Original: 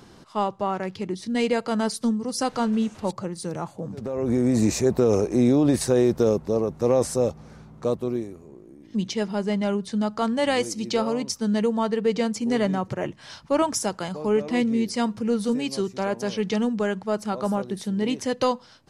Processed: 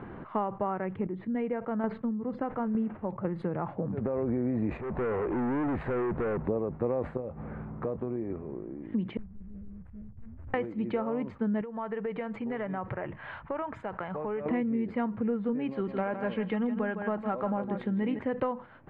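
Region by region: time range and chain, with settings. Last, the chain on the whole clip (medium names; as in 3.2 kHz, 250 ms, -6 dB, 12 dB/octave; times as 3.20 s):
0.93–3.25 s: tape spacing loss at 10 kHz 21 dB + square tremolo 1.1 Hz, depth 60%, duty 15%
4.77–6.39 s: compression 2:1, threshold -25 dBFS + hard clipper -32 dBFS
7.17–8.30 s: distance through air 150 m + compression 2.5:1, threshold -38 dBFS + doubling 23 ms -14 dB
9.17–10.54 s: inverse Chebyshev band-stop 330–3500 Hz, stop band 70 dB + waveshaping leveller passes 3
11.61–14.46 s: peaking EQ 240 Hz -9.5 dB 2 oct + compression 4:1, threshold -37 dBFS
15.71–18.19 s: treble shelf 2.9 kHz +9 dB + comb 3.7 ms, depth 31% + delay 159 ms -10 dB
whole clip: compression 5:1, threshold -35 dBFS; inverse Chebyshev low-pass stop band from 5.2 kHz, stop band 50 dB; decay stretcher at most 150 dB/s; trim +6.5 dB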